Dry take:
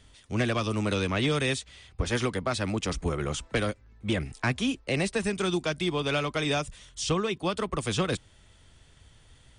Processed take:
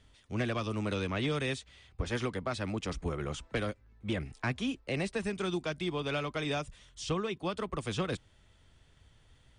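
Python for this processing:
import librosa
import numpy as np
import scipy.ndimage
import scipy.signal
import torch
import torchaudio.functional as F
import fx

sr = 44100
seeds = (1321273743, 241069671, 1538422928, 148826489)

y = fx.high_shelf(x, sr, hz=6100.0, db=-8.5)
y = y * librosa.db_to_amplitude(-5.5)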